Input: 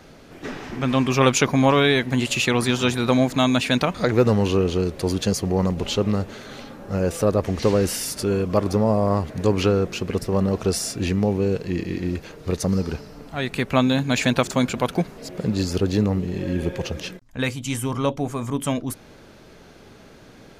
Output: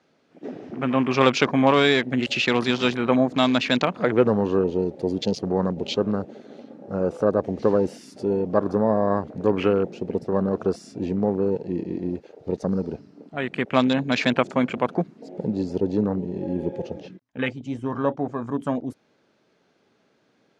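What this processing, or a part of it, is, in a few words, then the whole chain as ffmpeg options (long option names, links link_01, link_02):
over-cleaned archive recording: -filter_complex "[0:a]highpass=180,lowpass=6300,afwtdn=0.0282,asettb=1/sr,asplit=3[link_01][link_02][link_03];[link_01]atrim=end=16.984[link_04];[link_02]atrim=start=16.98:end=18.47,asetpts=PTS-STARTPTS,afade=type=in:duration=0.004:curve=qsin,afade=type=out:start_time=1.486:duration=0.004:curve=qsin,lowpass=6000[link_05];[link_03]atrim=start=18.466[link_06];[link_04][link_05]acrossfade=duration=0.004:curve1=hsin:curve2=qsin[link_07];[link_07][link_06]acrossfade=duration=0.004:curve1=qsin:curve2=hsin"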